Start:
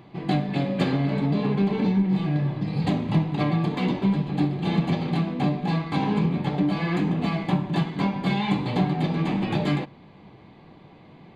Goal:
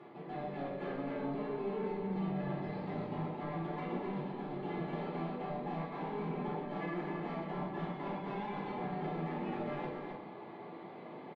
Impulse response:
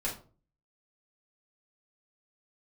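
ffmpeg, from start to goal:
-filter_complex "[0:a]highpass=360,aemphasis=mode=reproduction:type=75kf,acrossover=split=3200[link_01][link_02];[link_02]acompressor=threshold=-54dB:ratio=4:attack=1:release=60[link_03];[link_01][link_03]amix=inputs=2:normalize=0,highshelf=frequency=4100:gain=-7,areverse,acompressor=threshold=-40dB:ratio=12,areverse,asoftclip=type=tanh:threshold=-35.5dB,aecho=1:1:125.4|262.4:0.316|0.562[link_04];[1:a]atrim=start_sample=2205,asetrate=35721,aresample=44100[link_05];[link_04][link_05]afir=irnorm=-1:irlink=0,volume=-1.5dB"

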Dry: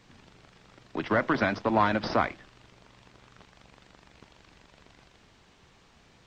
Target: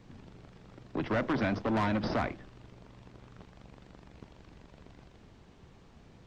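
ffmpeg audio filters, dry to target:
ffmpeg -i in.wav -filter_complex "[0:a]tiltshelf=frequency=760:gain=6.5,acrossover=split=2000[link_01][link_02];[link_01]asoftclip=type=tanh:threshold=-26dB[link_03];[link_03][link_02]amix=inputs=2:normalize=0" out.wav

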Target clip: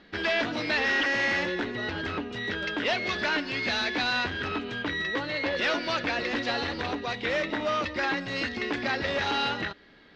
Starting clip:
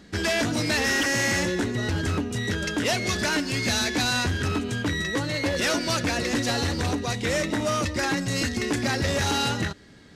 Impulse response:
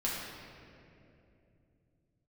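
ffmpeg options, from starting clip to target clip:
-af "lowpass=frequency=3900:width=0.5412,lowpass=frequency=3900:width=1.3066,equalizer=frequency=100:width=0.49:gain=-14.5"

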